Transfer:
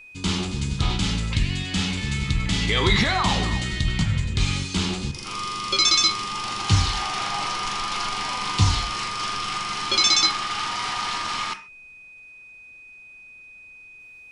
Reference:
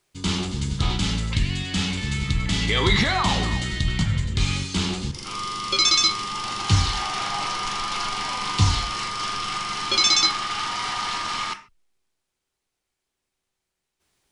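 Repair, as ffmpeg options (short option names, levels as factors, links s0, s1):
-af "bandreject=f=2500:w=30,agate=range=0.0891:threshold=0.0126"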